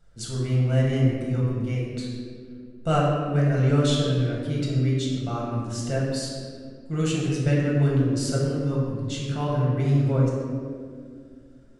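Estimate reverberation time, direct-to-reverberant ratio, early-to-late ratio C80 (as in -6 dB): 2.1 s, -4.5 dB, 2.0 dB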